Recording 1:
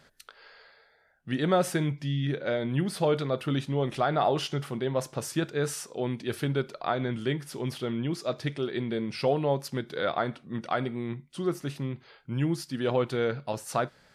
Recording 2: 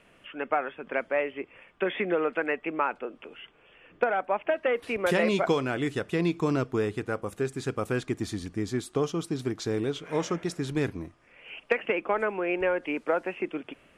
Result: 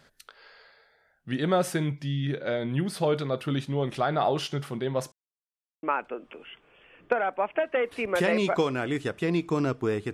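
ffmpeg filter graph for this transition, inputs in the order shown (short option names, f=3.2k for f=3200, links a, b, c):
-filter_complex "[0:a]apad=whole_dur=10.13,atrim=end=10.13,asplit=2[a][b];[a]atrim=end=5.12,asetpts=PTS-STARTPTS,afade=t=out:st=5.116:d=0.004:c=hsin[c];[b]atrim=start=5.12:end=5.83,asetpts=PTS-STARTPTS,volume=0[d];[1:a]atrim=start=2.74:end=7.04,asetpts=PTS-STARTPTS,afade=t=in:d=0.004:c=hsin[e];[c][d][e]concat=n=3:v=0:a=1"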